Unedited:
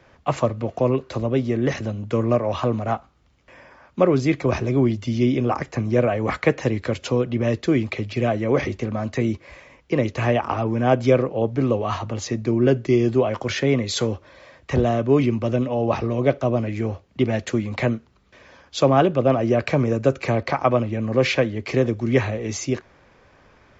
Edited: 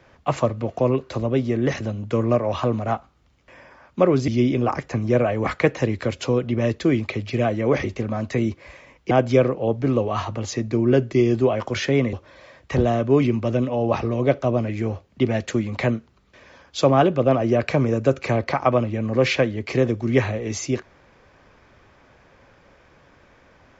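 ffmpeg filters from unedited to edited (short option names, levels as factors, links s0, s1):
-filter_complex "[0:a]asplit=4[s0][s1][s2][s3];[s0]atrim=end=4.282[s4];[s1]atrim=start=5.108:end=9.942[s5];[s2]atrim=start=10.848:end=13.872[s6];[s3]atrim=start=14.118[s7];[s4][s5]acrossfade=d=0.004:c1=hsin:c2=hsin[s8];[s8][s6]acrossfade=d=0.004:c1=hsin:c2=hsin[s9];[s9][s7]acrossfade=d=0.004:c1=hsin:c2=hsin"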